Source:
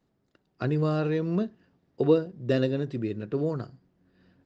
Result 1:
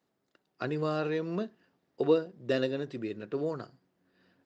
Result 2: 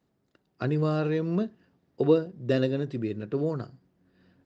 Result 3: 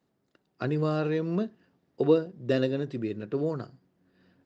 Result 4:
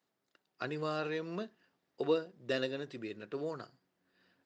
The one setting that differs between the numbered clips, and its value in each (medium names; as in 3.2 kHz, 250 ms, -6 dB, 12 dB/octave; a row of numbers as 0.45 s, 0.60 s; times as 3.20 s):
high-pass, cutoff frequency: 470 Hz, 49 Hz, 150 Hz, 1.2 kHz